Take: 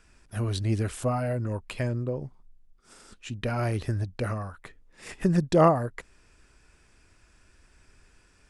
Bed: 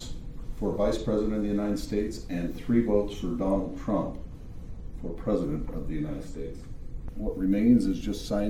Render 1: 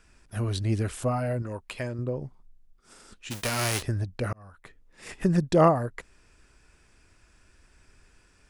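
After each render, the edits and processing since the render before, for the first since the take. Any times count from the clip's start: 1.42–1.99 low shelf 260 Hz -8 dB; 3.3–3.81 spectral whitening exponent 0.3; 4.33–5.07 fade in equal-power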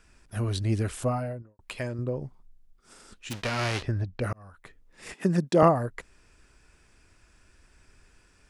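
1.04–1.59 studio fade out; 3.33–4.22 LPF 4300 Hz; 5.13–5.63 HPF 160 Hz 24 dB/oct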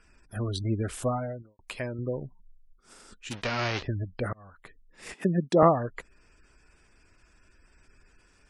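spectral gate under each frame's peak -30 dB strong; bell 92 Hz -3.5 dB 1.6 oct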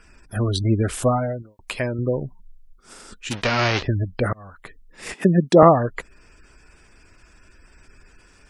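gain +9 dB; limiter -1 dBFS, peak gain reduction 3 dB

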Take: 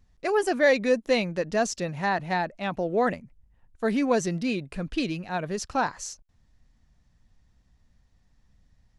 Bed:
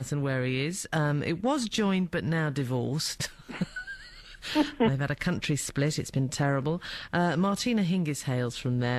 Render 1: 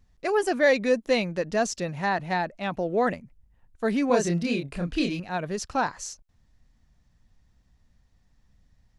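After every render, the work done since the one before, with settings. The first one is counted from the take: 4.07–5.2 doubler 29 ms -3 dB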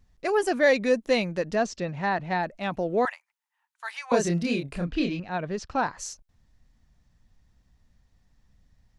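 1.55–2.43 air absorption 110 m; 3.05–4.12 elliptic high-pass 880 Hz, stop band 70 dB; 4.85–5.98 air absorption 120 m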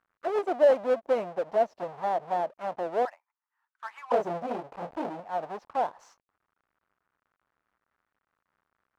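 half-waves squared off; auto-wah 660–1400 Hz, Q 2.9, down, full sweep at -21.5 dBFS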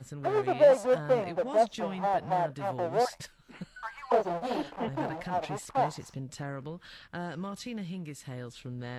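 add bed -11.5 dB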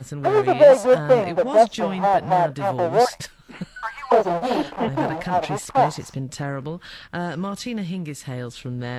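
gain +10 dB; limiter -3 dBFS, peak gain reduction 2 dB

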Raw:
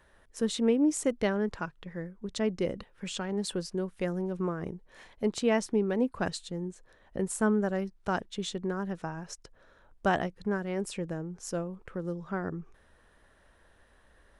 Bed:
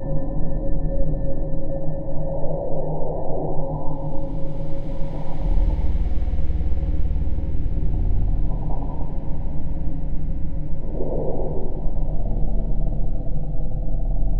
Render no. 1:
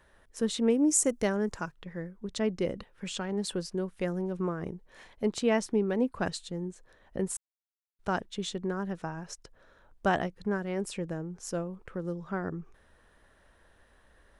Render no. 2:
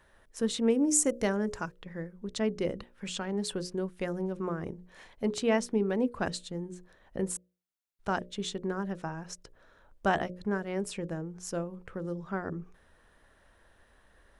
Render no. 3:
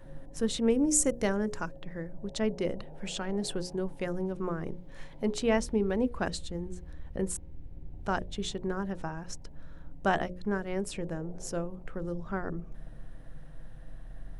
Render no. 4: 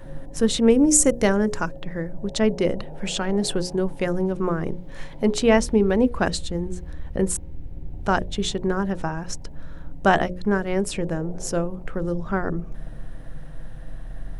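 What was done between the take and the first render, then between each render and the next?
0.7–1.72 resonant high shelf 5000 Hz +8.5 dB, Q 1.5; 7.37–7.99 mute
notches 60/120/180/240/300/360/420/480/540/600 Hz
add bed -22.5 dB
gain +9.5 dB; limiter -3 dBFS, peak gain reduction 2 dB

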